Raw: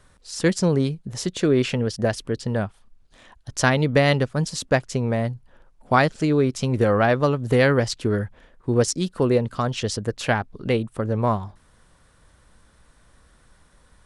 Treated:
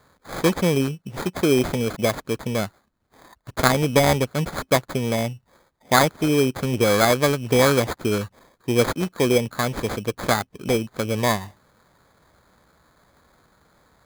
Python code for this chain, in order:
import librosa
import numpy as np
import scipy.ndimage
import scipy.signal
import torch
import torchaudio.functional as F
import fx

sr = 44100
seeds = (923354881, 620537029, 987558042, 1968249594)

y = scipy.signal.sosfilt(scipy.signal.butter(2, 59.0, 'highpass', fs=sr, output='sos'), x)
y = fx.low_shelf(y, sr, hz=100.0, db=-10.0)
y = fx.sample_hold(y, sr, seeds[0], rate_hz=2800.0, jitter_pct=0)
y = y * librosa.db_to_amplitude(1.5)